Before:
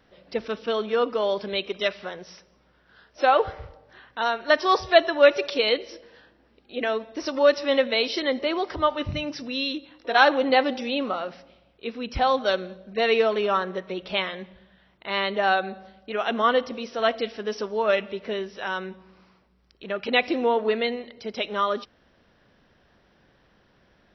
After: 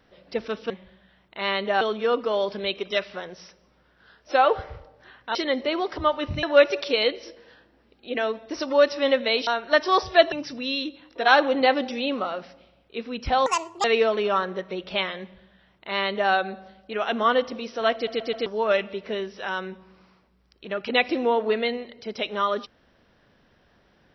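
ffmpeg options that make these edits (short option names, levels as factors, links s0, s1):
-filter_complex "[0:a]asplit=13[s0][s1][s2][s3][s4][s5][s6][s7][s8][s9][s10][s11][s12];[s0]atrim=end=0.702[s13];[s1]atrim=start=14.388:end=15.502[s14];[s2]atrim=start=0.698:end=4.242[s15];[s3]atrim=start=8.128:end=9.212[s16];[s4]atrim=start=5.088:end=8.132[s17];[s5]atrim=start=4.238:end=5.092[s18];[s6]atrim=start=9.208:end=12.354[s19];[s7]atrim=start=12.35:end=13.03,asetpts=PTS-STARTPTS,asetrate=78498,aresample=44100,atrim=end_sample=16847,asetpts=PTS-STARTPTS[s20];[s8]atrim=start=13.026:end=17.262[s21];[s9]atrim=start=17.128:end=17.262[s22];[s10]atrim=start=17.128:end=17.262[s23];[s11]atrim=start=17.128:end=17.262[s24];[s12]atrim=start=17.648[s25];[s13][s14]acrossfade=d=0.004:c1=hsin:c2=hsin[s26];[s26][s15]acrossfade=d=0.004:c1=hsin:c2=hsin[s27];[s27][s16]acrossfade=d=0.004:c1=hsin:c2=hsin[s28];[s28][s17]acrossfade=d=0.004:c1=hsin:c2=hsin[s29];[s29][s18]acrossfade=d=0.004:c1=hsin:c2=hsin[s30];[s30][s19]acrossfade=d=0.004:c1=hsin:c2=hsin[s31];[s31][s20]acrossfade=d=0.004:c1=hsin:c2=hsin[s32];[s32][s21]acrossfade=d=0.004:c1=hsin:c2=hsin[s33];[s33][s22]acrossfade=d=0.004:c1=hsin:c2=hsin[s34];[s34][s23]acrossfade=d=0.004:c1=hsin:c2=hsin[s35];[s35][s24]acrossfade=d=0.004:c1=hsin:c2=hsin[s36];[s36][s25]acrossfade=d=0.004:c1=hsin:c2=hsin"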